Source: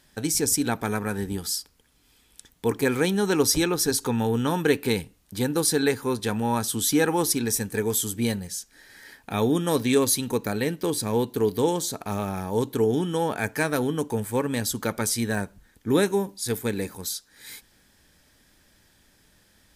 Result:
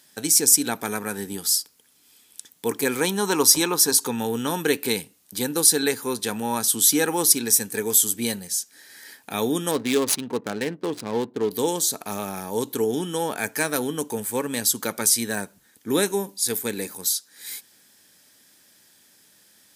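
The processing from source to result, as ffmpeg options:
-filter_complex "[0:a]asettb=1/sr,asplit=3[a][b][c];[a]atrim=end=3.014[d];[b]atrim=start=3.01:end=4.03,asetpts=PTS-STARTPTS,afade=t=in:d=0.004:c=qsin,afade=t=out:st=1.016:d=0.004:c=qsin,equalizer=f=1k:w=3.9:g=11.5[e];[c]atrim=start=4.026[f];[d][e]acrossfade=d=0.004:c1=hsin:c2=qsin[g];[g][f]acrossfade=d=0.004:c1=qsin:c2=hsin,asettb=1/sr,asplit=3[h][i][j];[h]atrim=end=9.714[k];[i]atrim=start=9.71:end=11.51,asetpts=PTS-STARTPTS,afade=t=in:d=0.004:c=qsin,afade=t=out:st=1.796:d=0.004:c=qsin,adynamicsmooth=sensitivity=4:basefreq=550[l];[j]atrim=start=11.506[m];[k][l]acrossfade=d=0.004:c1=hsin:c2=qsin[n];[n][m]acrossfade=d=0.004:c1=qsin:c2=hsin,highpass=180,highshelf=f=4.1k:g=11,volume=-1dB"

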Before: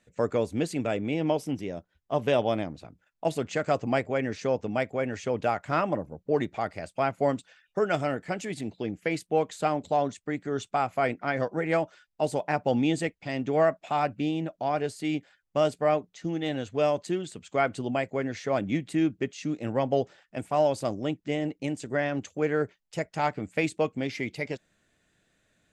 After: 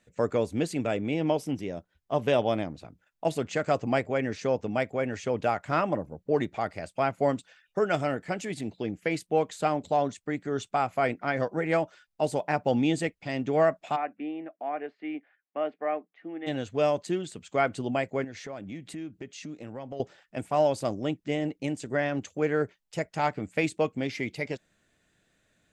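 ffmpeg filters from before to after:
-filter_complex "[0:a]asplit=3[a][b][c];[a]afade=t=out:st=13.95:d=0.02[d];[b]highpass=f=310:w=0.5412,highpass=f=310:w=1.3066,equalizer=f=390:t=q:w=4:g=-9,equalizer=f=550:t=q:w=4:g=-8,equalizer=f=950:t=q:w=4:g=-8,equalizer=f=1.4k:t=q:w=4:g=-6,lowpass=f=2.1k:w=0.5412,lowpass=f=2.1k:w=1.3066,afade=t=in:st=13.95:d=0.02,afade=t=out:st=16.46:d=0.02[e];[c]afade=t=in:st=16.46:d=0.02[f];[d][e][f]amix=inputs=3:normalize=0,asettb=1/sr,asplit=3[g][h][i];[g]atrim=end=18.244[j];[h]atrim=start=18.24:end=20,asetpts=PTS-STARTPTS,afade=t=in:d=0.004:c=qsin,afade=t=out:st=1.756:d=0.004:c=qsin,acompressor=threshold=-39dB:ratio=3:attack=3.2:release=140:knee=1:detection=peak[k];[i]atrim=start=19.996[l];[j][k]acrossfade=d=0.004:c1=hsin:c2=qsin[m];[m][l]acrossfade=d=0.004:c1=qsin:c2=hsin"

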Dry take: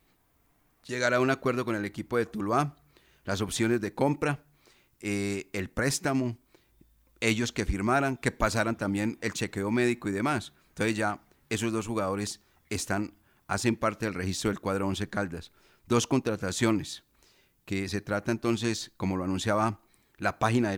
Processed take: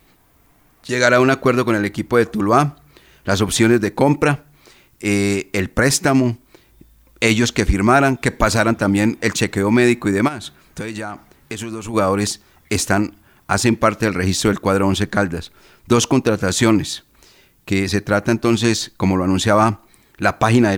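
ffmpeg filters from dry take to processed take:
-filter_complex "[0:a]asplit=3[a][b][c];[a]afade=t=out:st=10.27:d=0.02[d];[b]acompressor=threshold=-36dB:ratio=8:attack=3.2:release=140:knee=1:detection=peak,afade=t=in:st=10.27:d=0.02,afade=t=out:st=11.93:d=0.02[e];[c]afade=t=in:st=11.93:d=0.02[f];[d][e][f]amix=inputs=3:normalize=0,alimiter=level_in=14dB:limit=-1dB:release=50:level=0:latency=1,volume=-1dB"

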